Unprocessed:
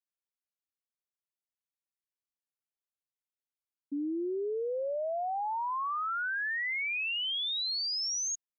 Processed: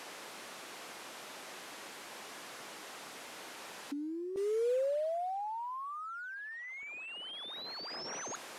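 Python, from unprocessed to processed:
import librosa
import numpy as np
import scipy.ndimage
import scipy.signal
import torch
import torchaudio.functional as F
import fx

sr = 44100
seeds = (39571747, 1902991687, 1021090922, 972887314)

y = fx.delta_mod(x, sr, bps=64000, step_db=-46.0)
y = fx.highpass(y, sr, hz=fx.steps((0.0, 280.0), (4.36, 930.0), (6.83, 290.0)), slope=12)
y = fx.over_compress(y, sr, threshold_db=-44.0, ratio=-1.0)
y = fx.lowpass(y, sr, hz=1400.0, slope=6)
y = F.gain(torch.from_numpy(y), 8.5).numpy()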